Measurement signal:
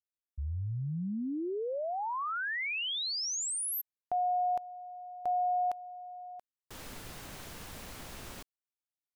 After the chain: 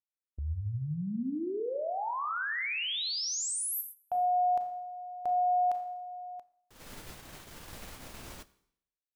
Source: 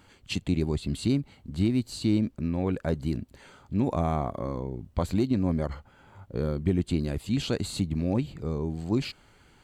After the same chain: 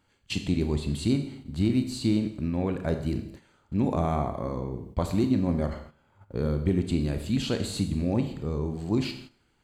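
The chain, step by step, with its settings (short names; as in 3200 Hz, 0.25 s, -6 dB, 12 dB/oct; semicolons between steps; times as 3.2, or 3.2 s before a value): Schroeder reverb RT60 0.73 s, combs from 27 ms, DRR 6.5 dB; gate -44 dBFS, range -12 dB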